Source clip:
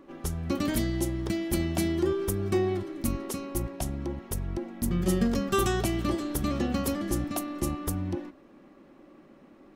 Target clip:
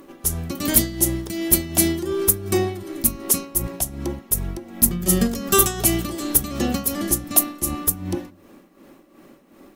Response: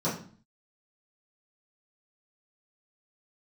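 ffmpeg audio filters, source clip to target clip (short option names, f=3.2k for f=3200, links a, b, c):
-filter_complex "[0:a]aemphasis=mode=production:type=cd,tremolo=f=2.7:d=0.69,highshelf=f=7.9k:g=11,acontrast=87,asplit=2[a][b];[1:a]atrim=start_sample=2205[c];[b][c]afir=irnorm=-1:irlink=0,volume=-28dB[d];[a][d]amix=inputs=2:normalize=0"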